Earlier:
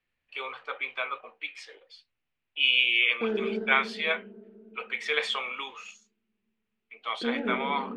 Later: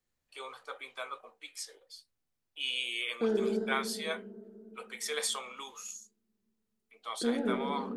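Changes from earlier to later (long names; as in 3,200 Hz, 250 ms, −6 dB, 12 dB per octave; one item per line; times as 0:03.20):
first voice −5.0 dB
master: remove low-pass with resonance 2,600 Hz, resonance Q 2.9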